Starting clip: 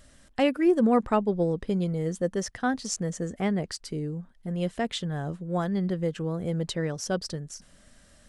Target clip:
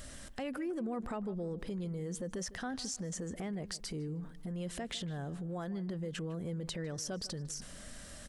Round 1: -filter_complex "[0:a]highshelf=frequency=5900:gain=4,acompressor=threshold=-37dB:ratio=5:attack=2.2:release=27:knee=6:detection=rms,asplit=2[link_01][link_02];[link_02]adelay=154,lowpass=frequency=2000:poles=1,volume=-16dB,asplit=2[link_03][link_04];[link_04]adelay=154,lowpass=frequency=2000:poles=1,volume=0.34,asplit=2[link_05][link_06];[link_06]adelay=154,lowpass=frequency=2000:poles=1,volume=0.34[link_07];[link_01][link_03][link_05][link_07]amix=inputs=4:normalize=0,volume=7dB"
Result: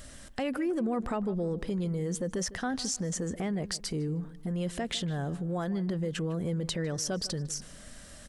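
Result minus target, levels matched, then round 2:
downward compressor: peak gain reduction −7 dB
-filter_complex "[0:a]highshelf=frequency=5900:gain=4,acompressor=threshold=-46dB:ratio=5:attack=2.2:release=27:knee=6:detection=rms,asplit=2[link_01][link_02];[link_02]adelay=154,lowpass=frequency=2000:poles=1,volume=-16dB,asplit=2[link_03][link_04];[link_04]adelay=154,lowpass=frequency=2000:poles=1,volume=0.34,asplit=2[link_05][link_06];[link_06]adelay=154,lowpass=frequency=2000:poles=1,volume=0.34[link_07];[link_01][link_03][link_05][link_07]amix=inputs=4:normalize=0,volume=7dB"

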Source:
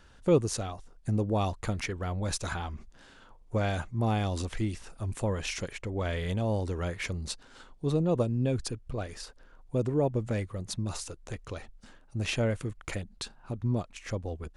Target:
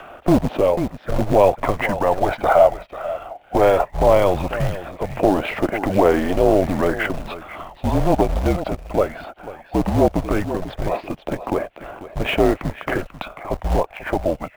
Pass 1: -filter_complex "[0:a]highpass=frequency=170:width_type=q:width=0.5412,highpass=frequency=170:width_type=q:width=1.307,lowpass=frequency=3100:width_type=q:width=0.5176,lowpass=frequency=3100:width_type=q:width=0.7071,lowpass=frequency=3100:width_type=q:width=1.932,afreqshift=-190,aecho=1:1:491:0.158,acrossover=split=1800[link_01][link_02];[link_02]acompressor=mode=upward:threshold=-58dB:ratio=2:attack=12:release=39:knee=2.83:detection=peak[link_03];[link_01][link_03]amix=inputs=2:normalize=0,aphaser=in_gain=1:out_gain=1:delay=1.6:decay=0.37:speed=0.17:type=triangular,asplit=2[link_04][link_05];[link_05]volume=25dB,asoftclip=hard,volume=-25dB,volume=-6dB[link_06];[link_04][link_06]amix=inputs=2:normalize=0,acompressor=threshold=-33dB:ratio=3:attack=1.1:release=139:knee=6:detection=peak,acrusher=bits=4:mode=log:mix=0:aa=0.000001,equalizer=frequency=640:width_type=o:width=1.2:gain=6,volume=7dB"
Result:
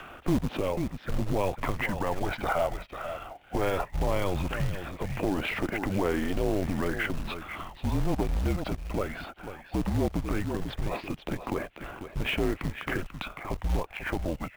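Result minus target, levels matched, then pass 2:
downward compressor: peak gain reduction +7.5 dB; 500 Hz band −3.0 dB
-filter_complex "[0:a]highpass=frequency=170:width_type=q:width=0.5412,highpass=frequency=170:width_type=q:width=1.307,lowpass=frequency=3100:width_type=q:width=0.5176,lowpass=frequency=3100:width_type=q:width=0.7071,lowpass=frequency=3100:width_type=q:width=1.932,afreqshift=-190,aecho=1:1:491:0.158,acrossover=split=1800[link_01][link_02];[link_02]acompressor=mode=upward:threshold=-58dB:ratio=2:attack=12:release=39:knee=2.83:detection=peak[link_03];[link_01][link_03]amix=inputs=2:normalize=0,aphaser=in_gain=1:out_gain=1:delay=1.6:decay=0.37:speed=0.17:type=triangular,asplit=2[link_04][link_05];[link_05]volume=25dB,asoftclip=hard,volume=-25dB,volume=-6dB[link_06];[link_04][link_06]amix=inputs=2:normalize=0,acompressor=threshold=-22dB:ratio=3:attack=1.1:release=139:knee=6:detection=peak,acrusher=bits=4:mode=log:mix=0:aa=0.000001,equalizer=frequency=640:width_type=o:width=1.2:gain=18,volume=7dB"

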